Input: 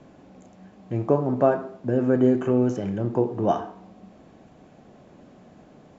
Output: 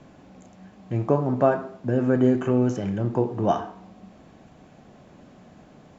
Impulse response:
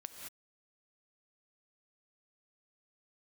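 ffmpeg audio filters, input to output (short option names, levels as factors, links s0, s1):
-af "equalizer=f=410:t=o:w=1.9:g=-4.5,volume=1.41"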